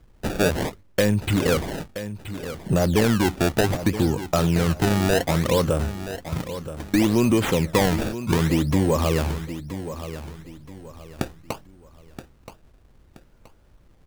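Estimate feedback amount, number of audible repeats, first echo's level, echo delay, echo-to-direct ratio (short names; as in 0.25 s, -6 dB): 33%, 3, -12.0 dB, 0.975 s, -11.5 dB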